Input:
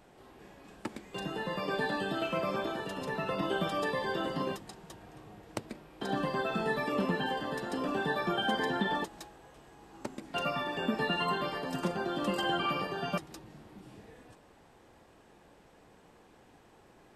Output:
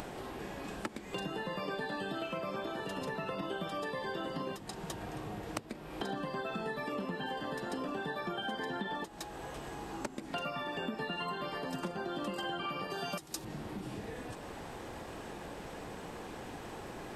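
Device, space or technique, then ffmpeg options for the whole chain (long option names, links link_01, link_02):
upward and downward compression: -filter_complex "[0:a]acompressor=mode=upward:threshold=-48dB:ratio=2.5,acompressor=threshold=-47dB:ratio=6,asettb=1/sr,asplit=3[link_01][link_02][link_03];[link_01]atrim=end=12.904[link_04];[link_02]atrim=start=12.9:end=13.45,asetpts=PTS-STARTPTS,afade=type=in:duration=0.004:curve=qsin,afade=type=out:start_time=0.546:duration=0.004:curve=qsin,bass=frequency=250:gain=-3,treble=frequency=4000:gain=11[link_05];[link_03]atrim=start=13.446[link_06];[link_04][link_05]acrossfade=duration=0.004:curve1=hsin:curve2=qsin[link_07];[link_07][link_06]acrossfade=duration=0.004:curve1=qsin:curve2=hsin,volume=10.5dB"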